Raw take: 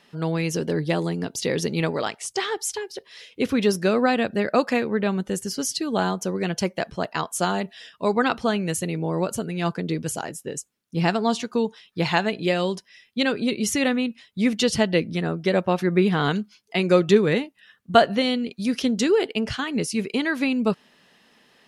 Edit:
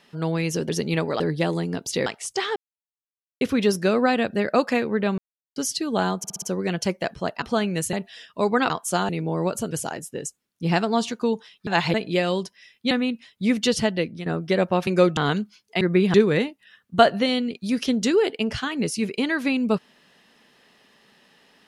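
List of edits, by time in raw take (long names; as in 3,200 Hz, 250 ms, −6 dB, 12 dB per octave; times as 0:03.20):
0:01.55–0:02.06: move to 0:00.69
0:02.56–0:03.41: silence
0:05.18–0:05.56: silence
0:06.18: stutter 0.06 s, 5 plays
0:07.18–0:07.57: swap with 0:08.34–0:08.85
0:09.47–0:10.03: remove
0:11.99–0:12.26: reverse
0:13.23–0:13.87: remove
0:14.67–0:15.22: fade out, to −9 dB
0:15.83–0:16.16: swap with 0:16.80–0:17.10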